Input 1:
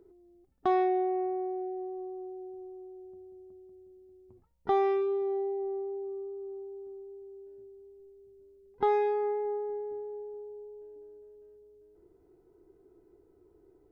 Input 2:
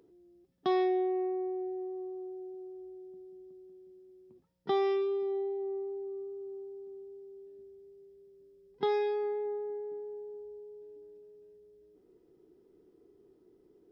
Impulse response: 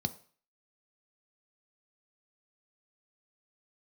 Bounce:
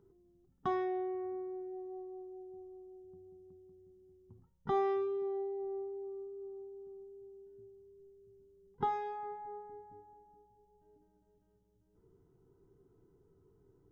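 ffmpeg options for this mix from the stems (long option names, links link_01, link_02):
-filter_complex "[0:a]volume=-3.5dB,asplit=2[link_01][link_02];[link_02]volume=-6dB[link_03];[1:a]lowpass=frequency=1700:width=0.5412,lowpass=frequency=1700:width=1.3066,volume=-14dB[link_04];[2:a]atrim=start_sample=2205[link_05];[link_03][link_05]afir=irnorm=-1:irlink=0[link_06];[link_01][link_04][link_06]amix=inputs=3:normalize=0"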